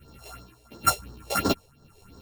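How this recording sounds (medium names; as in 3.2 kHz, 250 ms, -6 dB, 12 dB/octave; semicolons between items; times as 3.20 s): a buzz of ramps at a fixed pitch in blocks of 32 samples; phasing stages 4, 2.9 Hz, lowest notch 210–2500 Hz; tremolo triangle 1 Hz, depth 70%; a shimmering, thickened sound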